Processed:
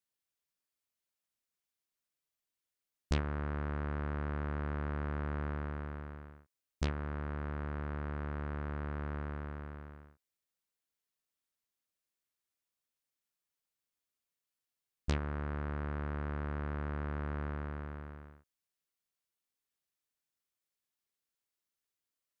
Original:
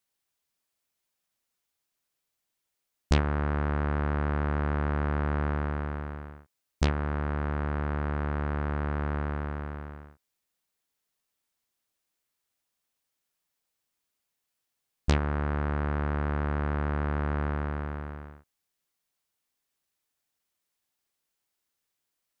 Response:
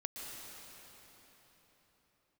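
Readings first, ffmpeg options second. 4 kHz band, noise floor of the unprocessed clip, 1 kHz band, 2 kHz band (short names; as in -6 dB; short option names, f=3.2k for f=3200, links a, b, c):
-8.5 dB, -83 dBFS, -10.0 dB, -8.5 dB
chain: -af "equalizer=f=800:w=3.4:g=-3.5,volume=-8.5dB"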